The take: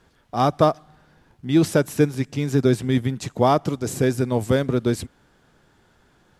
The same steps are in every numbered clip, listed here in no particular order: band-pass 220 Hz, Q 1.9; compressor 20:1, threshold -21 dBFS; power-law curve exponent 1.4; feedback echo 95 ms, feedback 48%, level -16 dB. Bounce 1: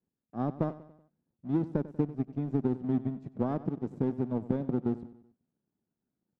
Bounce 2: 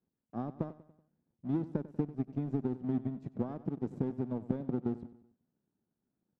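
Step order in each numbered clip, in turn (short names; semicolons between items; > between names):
band-pass > compressor > power-law curve > feedback echo; compressor > band-pass > power-law curve > feedback echo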